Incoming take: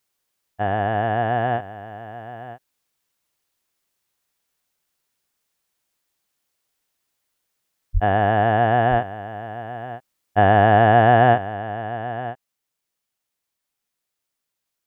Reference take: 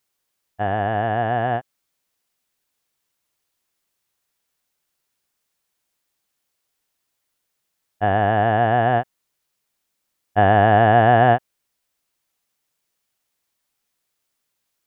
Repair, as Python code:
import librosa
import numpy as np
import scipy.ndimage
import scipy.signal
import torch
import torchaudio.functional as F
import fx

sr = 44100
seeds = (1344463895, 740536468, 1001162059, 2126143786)

y = fx.highpass(x, sr, hz=140.0, slope=24, at=(7.93, 8.05), fade=0.02)
y = fx.fix_echo_inverse(y, sr, delay_ms=969, level_db=-14.5)
y = fx.fix_level(y, sr, at_s=11.53, step_db=5.5)